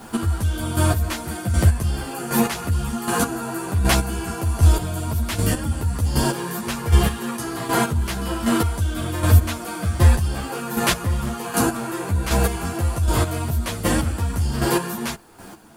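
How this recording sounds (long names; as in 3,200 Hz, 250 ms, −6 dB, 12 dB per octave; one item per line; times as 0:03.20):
a quantiser's noise floor 10 bits, dither none
chopped level 1.3 Hz, depth 65%, duty 20%
a shimmering, thickened sound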